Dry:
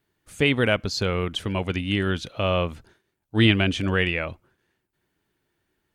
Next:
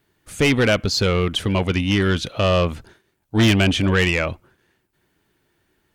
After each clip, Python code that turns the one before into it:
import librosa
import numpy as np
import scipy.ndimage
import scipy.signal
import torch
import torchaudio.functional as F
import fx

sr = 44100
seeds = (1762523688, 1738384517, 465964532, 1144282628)

y = 10.0 ** (-19.0 / 20.0) * np.tanh(x / 10.0 ** (-19.0 / 20.0))
y = y * librosa.db_to_amplitude(8.0)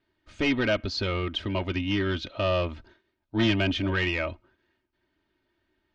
y = scipy.signal.sosfilt(scipy.signal.butter(4, 4800.0, 'lowpass', fs=sr, output='sos'), x)
y = y + 0.62 * np.pad(y, (int(3.2 * sr / 1000.0), 0))[:len(y)]
y = y * librosa.db_to_amplitude(-9.0)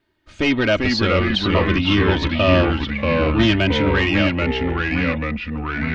y = fx.rider(x, sr, range_db=10, speed_s=2.0)
y = fx.echo_pitch(y, sr, ms=343, semitones=-2, count=3, db_per_echo=-3.0)
y = y * librosa.db_to_amplitude(8.0)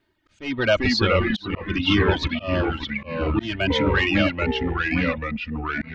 y = fx.dereverb_blind(x, sr, rt60_s=1.5)
y = fx.auto_swell(y, sr, attack_ms=300.0)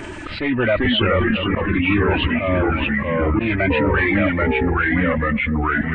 y = fx.freq_compress(x, sr, knee_hz=1500.0, ratio=1.5)
y = y + 10.0 ** (-22.5 / 20.0) * np.pad(y, (int(241 * sr / 1000.0), 0))[:len(y)]
y = fx.env_flatten(y, sr, amount_pct=70)